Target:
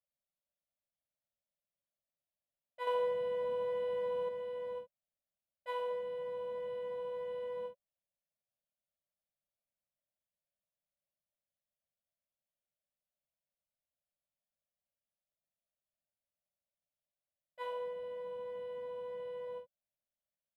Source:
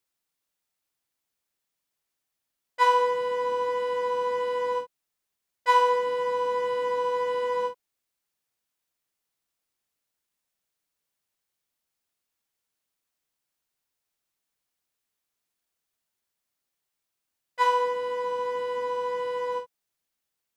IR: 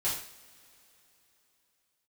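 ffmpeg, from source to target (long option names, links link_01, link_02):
-filter_complex "[0:a]firequalizer=gain_entry='entry(210,0);entry(360,-28);entry(570,8);entry(940,-15);entry(3400,-9);entry(5500,-28);entry(10000,-11)':delay=0.05:min_phase=1,asettb=1/sr,asplit=3[link_01][link_02][link_03];[link_01]atrim=end=2.874[link_04];[link_02]atrim=start=2.87:end=4.29,asetpts=PTS-STARTPTS,afade=type=in:duration=0.004:curve=qsin,afade=type=out:start_time=1.416:duration=0.004:curve=qsin,acontrast=28[link_05];[link_03]atrim=start=4.286[link_06];[link_04][link_05]acrossfade=duration=0.004:curve1=hsin:curve2=qsin[link_07];[link_07][link_06]acrossfade=duration=0.004:curve1=qsin:curve2=hsin,volume=-7dB"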